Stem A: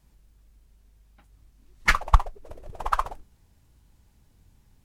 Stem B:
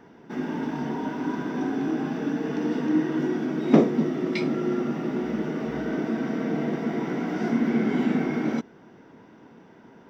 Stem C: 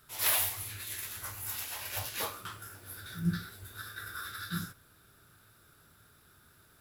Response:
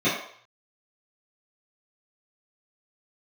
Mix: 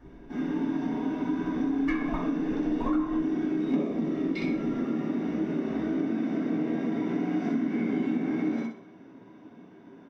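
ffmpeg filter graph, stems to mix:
-filter_complex "[0:a]lowpass=f=1600:p=1,acompressor=threshold=0.0355:ratio=6,aphaser=in_gain=1:out_gain=1:delay=4.6:decay=0.77:speed=0.63:type=triangular,volume=0.501,asplit=2[s0][s1];[s1]volume=0.376[s2];[1:a]volume=0.355,asplit=3[s3][s4][s5];[s4]volume=0.266[s6];[s5]volume=0.708[s7];[3:a]atrim=start_sample=2205[s8];[s2][s6]amix=inputs=2:normalize=0[s9];[s9][s8]afir=irnorm=-1:irlink=0[s10];[s7]aecho=0:1:62|124|186|248|310:1|0.37|0.137|0.0507|0.0187[s11];[s0][s3][s10][s11]amix=inputs=4:normalize=0,acompressor=threshold=0.0631:ratio=6"

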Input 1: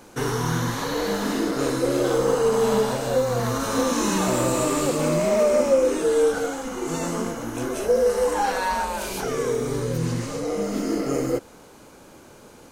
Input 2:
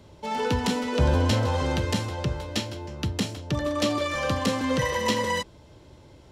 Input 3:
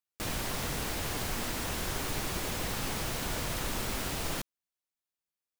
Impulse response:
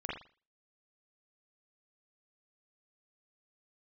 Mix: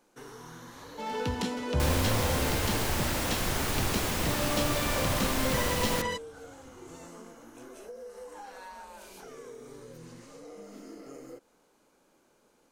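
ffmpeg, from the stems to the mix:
-filter_complex "[0:a]equalizer=f=87:w=1.2:g=-14,acompressor=threshold=0.0708:ratio=6,volume=0.119[s0];[1:a]adelay=750,volume=0.473[s1];[2:a]adelay=1600,volume=1.12,asplit=2[s2][s3];[s3]volume=0.501[s4];[3:a]atrim=start_sample=2205[s5];[s4][s5]afir=irnorm=-1:irlink=0[s6];[s0][s1][s2][s6]amix=inputs=4:normalize=0"

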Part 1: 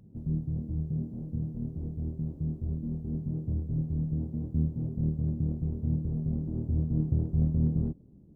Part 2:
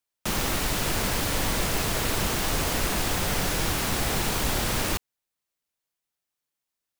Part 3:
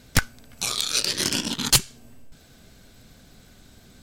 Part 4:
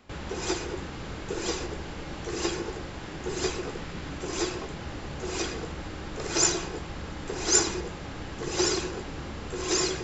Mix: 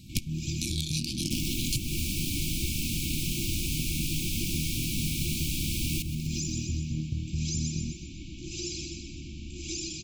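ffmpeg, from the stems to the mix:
-filter_complex "[0:a]volume=1.33[s0];[1:a]adelay=1050,volume=1.41,asplit=2[s1][s2];[s2]volume=0.158[s3];[2:a]volume=0.944[s4];[3:a]alimiter=limit=0.133:level=0:latency=1:release=248,volume=0.596,asplit=2[s5][s6];[s6]volume=0.501[s7];[s3][s7]amix=inputs=2:normalize=0,aecho=0:1:125|250|375|500|625|750|875|1000:1|0.54|0.292|0.157|0.085|0.0459|0.0248|0.0134[s8];[s0][s1][s4][s5][s8]amix=inputs=5:normalize=0,afftfilt=real='re*(1-between(b*sr/4096,360,2200))':imag='im*(1-between(b*sr/4096,360,2200))':win_size=4096:overlap=0.75,acrossover=split=780|1800[s9][s10][s11];[s9]acompressor=threshold=0.0355:ratio=4[s12];[s10]acompressor=threshold=0.00178:ratio=4[s13];[s11]acompressor=threshold=0.0224:ratio=4[s14];[s12][s13][s14]amix=inputs=3:normalize=0"

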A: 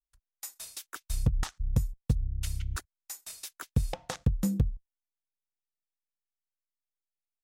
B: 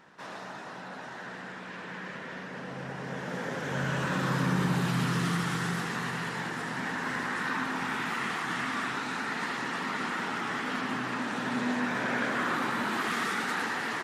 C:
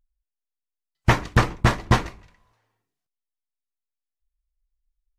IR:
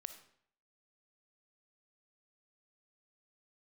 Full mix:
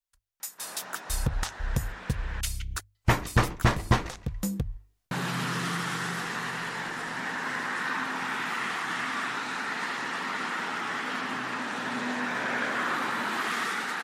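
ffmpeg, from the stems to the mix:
-filter_complex "[0:a]bandreject=f=50:t=h:w=6,bandreject=f=100:t=h:w=6,volume=1.41[s0];[1:a]adelay=400,volume=0.631,asplit=3[s1][s2][s3];[s1]atrim=end=2.41,asetpts=PTS-STARTPTS,afade=t=out:st=2.406:d=0.004:c=hsin[s4];[s2]atrim=start=2.41:end=5.11,asetpts=PTS-STARTPTS,volume=0[s5];[s3]atrim=start=5.11,asetpts=PTS-STARTPTS,afade=t=in:d=0.004:c=hsin[s6];[s4][s5][s6]concat=n=3:v=0:a=1[s7];[2:a]adelay=2000,volume=0.944[s8];[s0][s7]amix=inputs=2:normalize=0,lowshelf=f=400:g=-8,alimiter=limit=0.0841:level=0:latency=1:release=348,volume=1[s9];[s8][s9]amix=inputs=2:normalize=0,dynaudnorm=f=220:g=7:m=2,alimiter=limit=0.335:level=0:latency=1:release=465"

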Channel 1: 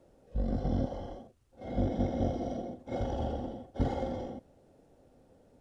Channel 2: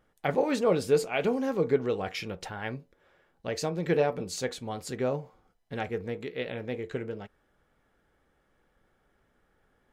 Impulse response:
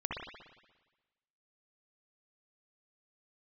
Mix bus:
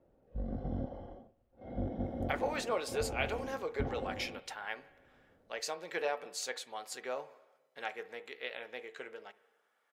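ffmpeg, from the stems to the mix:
-filter_complex "[0:a]lowpass=2300,volume=0.447,asplit=2[s0][s1];[s1]volume=0.0668[s2];[1:a]highpass=760,adelay=2050,volume=0.708,asplit=2[s3][s4];[s4]volume=0.1[s5];[2:a]atrim=start_sample=2205[s6];[s2][s5]amix=inputs=2:normalize=0[s7];[s7][s6]afir=irnorm=-1:irlink=0[s8];[s0][s3][s8]amix=inputs=3:normalize=0"

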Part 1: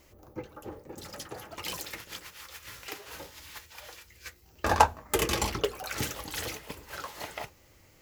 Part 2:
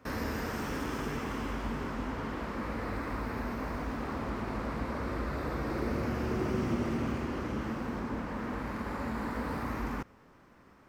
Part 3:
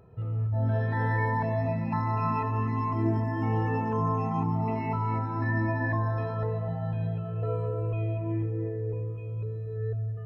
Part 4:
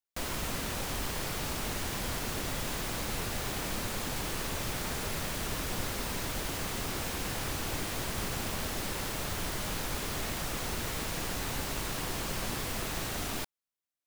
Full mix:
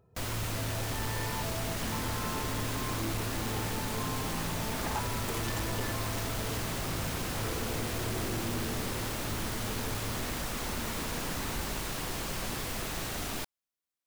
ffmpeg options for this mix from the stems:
-filter_complex "[0:a]adelay=150,volume=0.266[s0];[1:a]adelay=1750,volume=0.473[s1];[2:a]volume=0.316[s2];[3:a]volume=0.944[s3];[s0][s1][s2][s3]amix=inputs=4:normalize=0,asoftclip=type=hard:threshold=0.0398"

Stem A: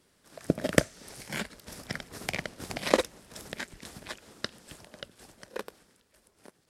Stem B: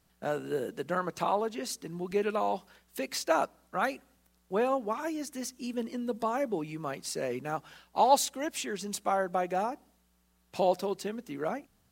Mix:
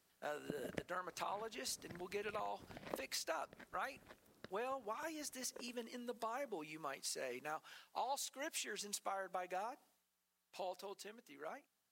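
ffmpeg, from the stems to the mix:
-filter_complex "[0:a]lowpass=f=1100:p=1,volume=0.168[s0];[1:a]highpass=f=1000:p=1,volume=0.668,afade=t=out:st=9.83:d=0.25:silence=0.446684[s1];[s0][s1]amix=inputs=2:normalize=0,acompressor=threshold=0.01:ratio=5"

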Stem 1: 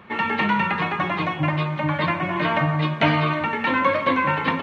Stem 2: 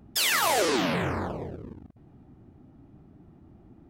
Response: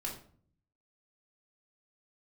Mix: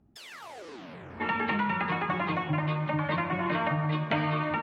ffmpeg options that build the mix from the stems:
-filter_complex "[0:a]adelay=1100,volume=0.708[s0];[1:a]acompressor=threshold=0.0398:ratio=6,volume=0.237[s1];[s0][s1]amix=inputs=2:normalize=0,aemphasis=mode=reproduction:type=50fm,acompressor=threshold=0.0501:ratio=3"

